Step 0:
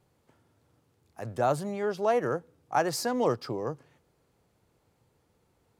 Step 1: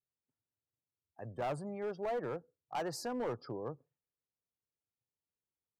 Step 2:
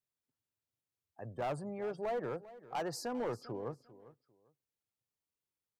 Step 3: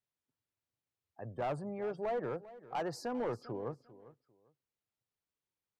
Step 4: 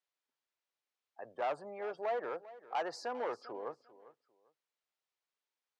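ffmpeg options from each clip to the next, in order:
ffmpeg -i in.wav -af "afftdn=noise_reduction=26:noise_floor=-45,asoftclip=type=hard:threshold=-24dB,adynamicequalizer=threshold=0.00562:dfrequency=1800:dqfactor=0.7:tfrequency=1800:tqfactor=0.7:attack=5:release=100:ratio=0.375:range=3:mode=cutabove:tftype=highshelf,volume=-8dB" out.wav
ffmpeg -i in.wav -af "aecho=1:1:398|796:0.133|0.0293" out.wav
ffmpeg -i in.wav -af "highshelf=frequency=5500:gain=-10.5,volume=1dB" out.wav
ffmpeg -i in.wav -af "highpass=560,lowpass=5800,volume=3dB" out.wav

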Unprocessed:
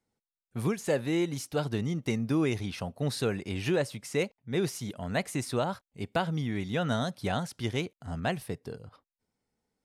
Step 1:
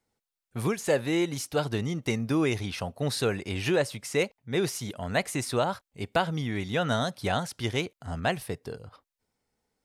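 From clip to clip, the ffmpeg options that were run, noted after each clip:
ffmpeg -i in.wav -af "equalizer=frequency=190:width_type=o:width=1.8:gain=-5,volume=4.5dB" out.wav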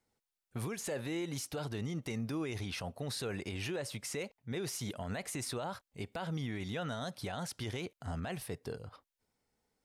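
ffmpeg -i in.wav -filter_complex "[0:a]asplit=2[link_01][link_02];[link_02]acompressor=threshold=-32dB:ratio=6,volume=-1dB[link_03];[link_01][link_03]amix=inputs=2:normalize=0,alimiter=limit=-22.5dB:level=0:latency=1:release=41,volume=-7.5dB" out.wav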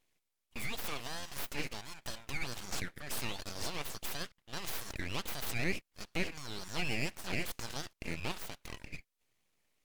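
ffmpeg -i in.wav -af "highpass=frequency=1100:width_type=q:width=4.7,aeval=exprs='abs(val(0))':channel_layout=same,volume=5dB" -ar 44100 -c:a libvorbis -b:a 192k out.ogg

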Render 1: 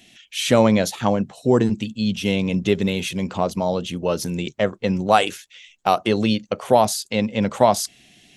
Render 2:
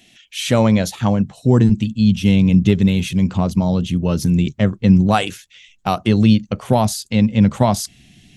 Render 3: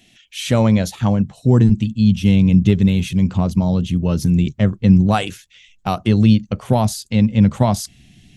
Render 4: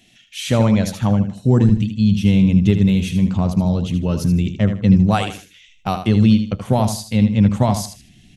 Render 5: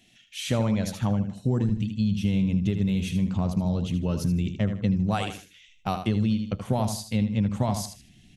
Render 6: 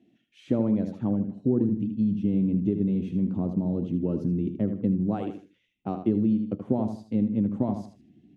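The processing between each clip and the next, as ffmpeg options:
ffmpeg -i in.wav -af "asubboost=boost=9:cutoff=200" out.wav
ffmpeg -i in.wav -af "lowshelf=frequency=150:gain=6.5,volume=-2.5dB" out.wav
ffmpeg -i in.wav -af "aecho=1:1:78|156|234:0.355|0.0993|0.0278,volume=-1dB" out.wav
ffmpeg -i in.wav -af "acompressor=threshold=-14dB:ratio=6,volume=-6dB" out.wav
ffmpeg -i in.wav -af "bandpass=frequency=310:width_type=q:width=2.6:csg=0,volume=8.5dB" out.wav

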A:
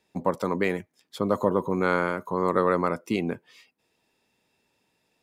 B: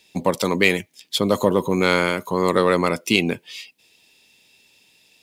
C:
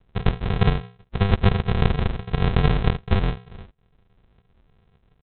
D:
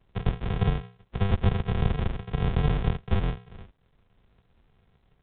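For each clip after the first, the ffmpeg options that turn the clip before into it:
ffmpeg -i in.wav -filter_complex "[0:a]highshelf=frequency=2000:width_type=q:width=1.5:gain=11,asplit=2[link_01][link_02];[link_02]volume=16.5dB,asoftclip=hard,volume=-16.5dB,volume=-9dB[link_03];[link_01][link_03]amix=inputs=2:normalize=0,volume=3.5dB" out.wav
ffmpeg -i in.wav -af "bandreject=frequency=60:width_type=h:width=6,bandreject=frequency=120:width_type=h:width=6,bandreject=frequency=180:width_type=h:width=6,aresample=8000,acrusher=samples=27:mix=1:aa=0.000001,aresample=44100" out.wav
ffmpeg -i in.wav -filter_complex "[0:a]acrossover=split=120[link_01][link_02];[link_02]asoftclip=type=tanh:threshold=-14dB[link_03];[link_01][link_03]amix=inputs=2:normalize=0,volume=-4.5dB" -ar 8000 -c:a pcm_alaw out.wav

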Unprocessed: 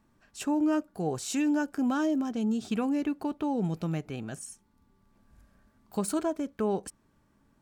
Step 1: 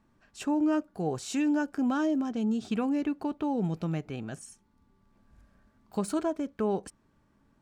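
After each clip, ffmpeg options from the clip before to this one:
ffmpeg -i in.wav -af "highshelf=frequency=9200:gain=-11.5" out.wav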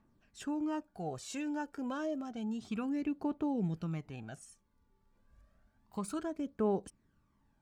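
ffmpeg -i in.wav -af "aphaser=in_gain=1:out_gain=1:delay=2.3:decay=0.49:speed=0.3:type=triangular,volume=-8dB" out.wav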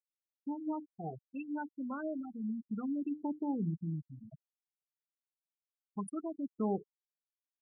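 ffmpeg -i in.wav -af "bandreject=frequency=60:width_type=h:width=6,bandreject=frequency=120:width_type=h:width=6,bandreject=frequency=180:width_type=h:width=6,bandreject=frequency=240:width_type=h:width=6,bandreject=frequency=300:width_type=h:width=6,bandreject=frequency=360:width_type=h:width=6,bandreject=frequency=420:width_type=h:width=6,afftfilt=real='re*gte(hypot(re,im),0.0398)':imag='im*gte(hypot(re,im),0.0398)':win_size=1024:overlap=0.75,equalizer=frequency=500:width=2:gain=-6.5,volume=1dB" out.wav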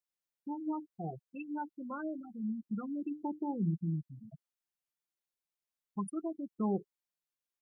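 ffmpeg -i in.wav -af "aecho=1:1:5.7:0.47" out.wav

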